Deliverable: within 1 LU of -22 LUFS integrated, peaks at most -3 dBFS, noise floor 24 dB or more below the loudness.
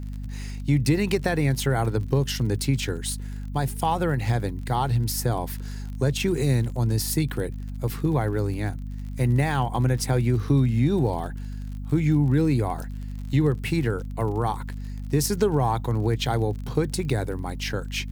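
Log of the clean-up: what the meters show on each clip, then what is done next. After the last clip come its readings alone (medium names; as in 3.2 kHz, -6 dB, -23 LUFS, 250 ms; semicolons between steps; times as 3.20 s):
tick rate 36 per s; hum 50 Hz; highest harmonic 250 Hz; hum level -30 dBFS; loudness -25.0 LUFS; peak level -8.5 dBFS; loudness target -22.0 LUFS
-> de-click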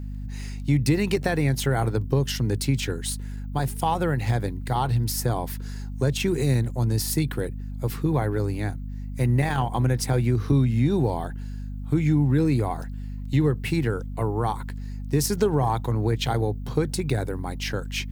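tick rate 1.7 per s; hum 50 Hz; highest harmonic 250 Hz; hum level -30 dBFS
-> de-hum 50 Hz, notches 5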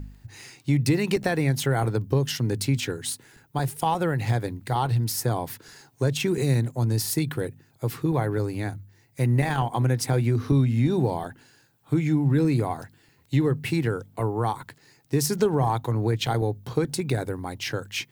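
hum not found; loudness -25.5 LUFS; peak level -10.0 dBFS; loudness target -22.0 LUFS
-> trim +3.5 dB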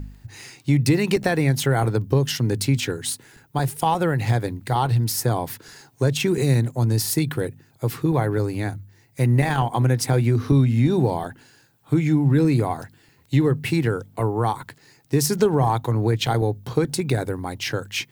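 loudness -22.0 LUFS; peak level -6.5 dBFS; noise floor -57 dBFS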